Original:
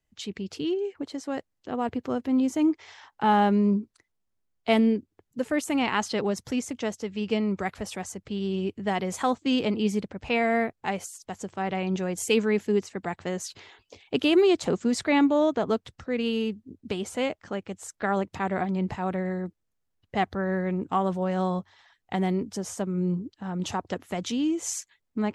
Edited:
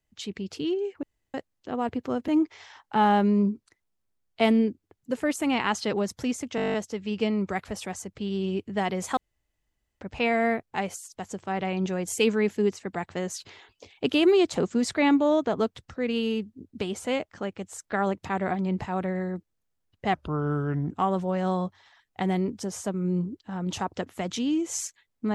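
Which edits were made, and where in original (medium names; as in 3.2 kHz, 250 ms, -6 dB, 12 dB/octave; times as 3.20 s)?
1.03–1.34 s: room tone
2.28–2.56 s: delete
6.84 s: stutter 0.02 s, 10 plays
9.27–10.11 s: room tone
20.24–20.84 s: speed 78%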